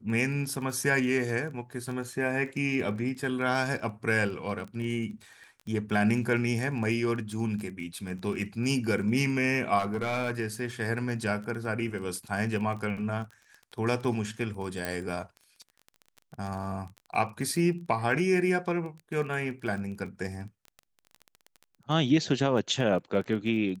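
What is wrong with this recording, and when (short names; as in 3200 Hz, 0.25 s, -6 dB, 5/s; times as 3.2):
crackle 18/s -36 dBFS
9.78–10.31 clipped -25 dBFS
14.85 pop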